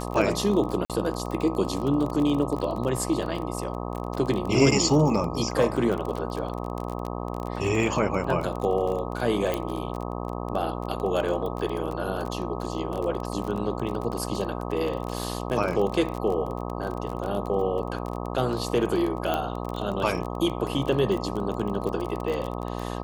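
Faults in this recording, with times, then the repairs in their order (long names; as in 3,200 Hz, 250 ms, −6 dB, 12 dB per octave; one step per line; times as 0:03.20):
mains buzz 60 Hz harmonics 21 −32 dBFS
surface crackle 27 per second −29 dBFS
0:00.85–0:00.90: drop-out 47 ms
0:09.54: click −13 dBFS
0:19.34: click −13 dBFS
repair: click removal
hum removal 60 Hz, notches 21
repair the gap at 0:00.85, 47 ms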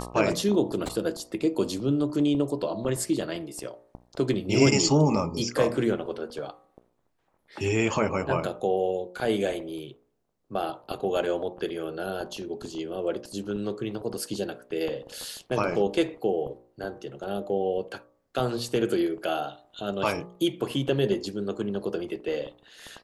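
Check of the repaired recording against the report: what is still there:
none of them is left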